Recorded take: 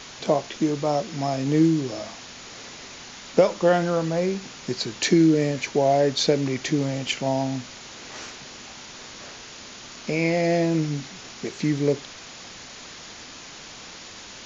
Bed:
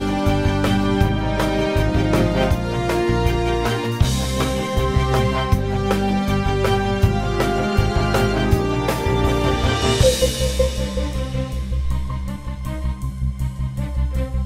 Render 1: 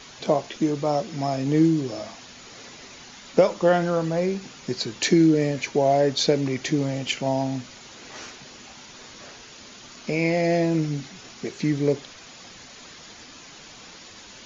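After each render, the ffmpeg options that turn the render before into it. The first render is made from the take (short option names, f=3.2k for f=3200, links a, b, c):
-af "afftdn=nr=6:nf=-42"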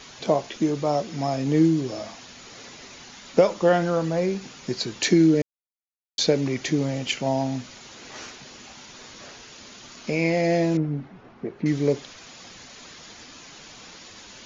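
-filter_complex "[0:a]asettb=1/sr,asplit=3[a][b][c];[a]atrim=end=10.774[d];[b]atrim=start=10.77:end=11.66,asetpts=PTS-STARTPTS,afade=t=in:d=0.004:c=qsin,afade=t=out:st=0.886:d=0.004:c=qsin,lowpass=1.2k[e];[c]atrim=start=11.656[f];[d][e]acrossfade=d=0.004:c1=hsin:c2=qsin[g];[g][f]acrossfade=d=0.004:c1=qsin:c2=hsin,asplit=3[h][i][j];[h]atrim=end=5.42,asetpts=PTS-STARTPTS,afade=t=out:st=5.416:d=0.004:c=hsin[k];[i]atrim=start=5.42:end=6.18,asetpts=PTS-STARTPTS,volume=0[l];[j]atrim=start=6.18,asetpts=PTS-STARTPTS,afade=t=in:d=0.004:c=hsin[m];[k][l][m]concat=n=3:v=0:a=1"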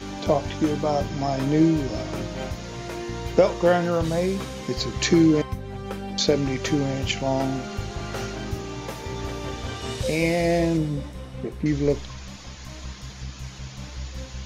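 -filter_complex "[1:a]volume=-13.5dB[a];[0:a][a]amix=inputs=2:normalize=0"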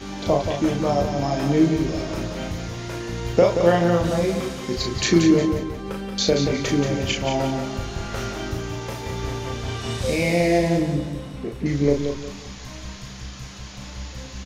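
-filter_complex "[0:a]asplit=2[a][b];[b]adelay=35,volume=-4dB[c];[a][c]amix=inputs=2:normalize=0,aecho=1:1:179|358|537|716:0.447|0.152|0.0516|0.0176"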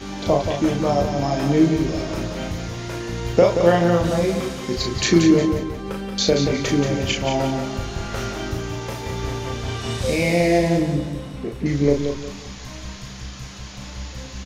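-af "volume=1.5dB"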